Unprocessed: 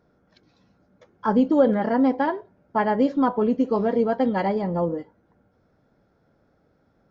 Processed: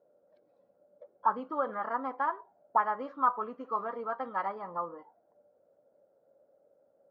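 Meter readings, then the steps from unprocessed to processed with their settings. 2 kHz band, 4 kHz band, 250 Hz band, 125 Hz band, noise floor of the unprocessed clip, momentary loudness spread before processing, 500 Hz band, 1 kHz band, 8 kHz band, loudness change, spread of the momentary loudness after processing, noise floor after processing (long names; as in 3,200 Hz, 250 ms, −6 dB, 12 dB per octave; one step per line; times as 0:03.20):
−6.5 dB, below −15 dB, −23.5 dB, below −25 dB, −65 dBFS, 9 LU, −15.5 dB, −3.5 dB, can't be measured, −10.5 dB, 9 LU, −70 dBFS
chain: envelope filter 560–1,200 Hz, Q 8.9, up, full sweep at −21 dBFS
level +8.5 dB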